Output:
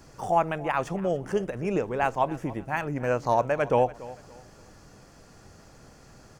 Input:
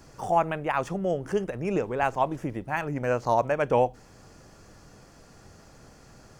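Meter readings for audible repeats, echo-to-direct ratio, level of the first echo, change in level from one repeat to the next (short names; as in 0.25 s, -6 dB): 2, -18.0 dB, -18.5 dB, -10.0 dB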